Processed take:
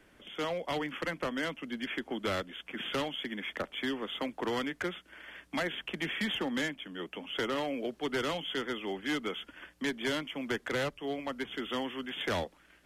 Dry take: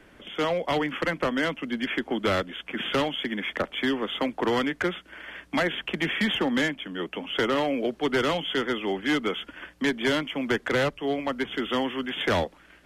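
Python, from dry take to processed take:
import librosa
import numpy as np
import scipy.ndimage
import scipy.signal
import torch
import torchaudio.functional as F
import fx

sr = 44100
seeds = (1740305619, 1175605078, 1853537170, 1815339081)

y = fx.high_shelf(x, sr, hz=4800.0, db=6.5)
y = y * librosa.db_to_amplitude(-8.5)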